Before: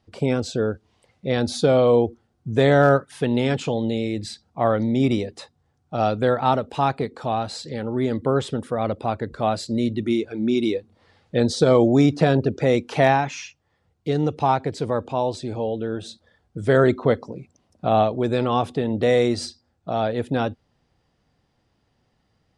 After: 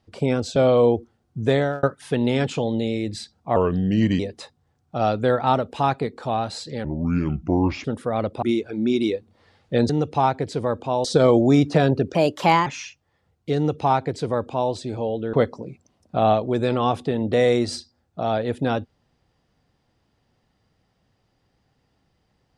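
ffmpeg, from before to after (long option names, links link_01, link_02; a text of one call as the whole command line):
ffmpeg -i in.wav -filter_complex "[0:a]asplit=13[link_01][link_02][link_03][link_04][link_05][link_06][link_07][link_08][link_09][link_10][link_11][link_12][link_13];[link_01]atrim=end=0.562[link_14];[link_02]atrim=start=1.658:end=2.93,asetpts=PTS-STARTPTS,afade=type=out:start_time=0.892:duration=0.38[link_15];[link_03]atrim=start=2.93:end=4.664,asetpts=PTS-STARTPTS,afade=type=in:duration=0.004:curve=hsin[link_16];[link_04]atrim=start=4.66:end=5.18,asetpts=PTS-STARTPTS,asetrate=36162,aresample=44100[link_17];[link_05]atrim=start=5.176:end=7.834[link_18];[link_06]atrim=start=7.83:end=8.5,asetpts=PTS-STARTPTS,asetrate=29547,aresample=44100[link_19];[link_07]atrim=start=8.496:end=9.082[link_20];[link_08]atrim=start=10.038:end=11.512[link_21];[link_09]atrim=start=14.148:end=15.302[link_22];[link_10]atrim=start=11.508:end=12.614[link_23];[link_11]atrim=start=12.61:end=13.25,asetpts=PTS-STARTPTS,asetrate=54243,aresample=44100,atrim=end_sample=22946,asetpts=PTS-STARTPTS[link_24];[link_12]atrim=start=13.246:end=15.922[link_25];[link_13]atrim=start=17.028[link_26];[link_15][link_16]concat=n=2:v=0:a=1[link_27];[link_14][link_27]acrossfade=duration=0.004:curve1=hsin:curve2=hsin[link_28];[link_28][link_17]acrossfade=duration=0.004:curve1=hsin:curve2=hsin[link_29];[link_29][link_18]acrossfade=duration=0.004:curve1=hsin:curve2=hsin[link_30];[link_30][link_19]acrossfade=duration=0.004:curve1=hsin:curve2=hsin[link_31];[link_31][link_20]acrossfade=duration=0.004:curve1=hsin:curve2=hsin[link_32];[link_32][link_21]acrossfade=duration=0.004:curve1=hsin:curve2=hsin[link_33];[link_33][link_22]acrossfade=duration=0.004:curve1=hsin:curve2=hsin[link_34];[link_34][link_23]acrossfade=duration=0.004:curve1=hsin:curve2=hsin[link_35];[link_35][link_24]acrossfade=duration=0.004:curve1=hsin:curve2=hsin[link_36];[link_36][link_25]acrossfade=duration=0.004:curve1=hsin:curve2=hsin[link_37];[link_37][link_26]acrossfade=duration=0.004:curve1=hsin:curve2=hsin" out.wav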